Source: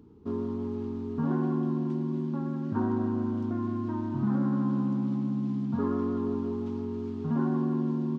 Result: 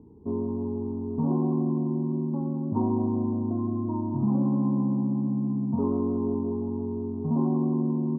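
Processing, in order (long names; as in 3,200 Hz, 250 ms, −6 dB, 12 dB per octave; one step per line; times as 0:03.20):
Chebyshev low-pass filter 1,000 Hz, order 5
level +3.5 dB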